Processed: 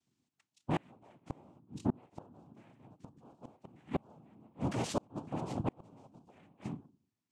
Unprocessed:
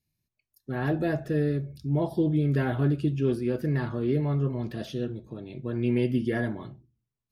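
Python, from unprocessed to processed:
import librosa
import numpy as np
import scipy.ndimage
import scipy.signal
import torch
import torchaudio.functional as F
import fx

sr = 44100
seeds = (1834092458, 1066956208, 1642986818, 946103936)

y = fx.noise_vocoder(x, sr, seeds[0], bands=4)
y = fx.gate_flip(y, sr, shuts_db=-22.0, range_db=-35)
y = y * 10.0 ** (2.0 / 20.0)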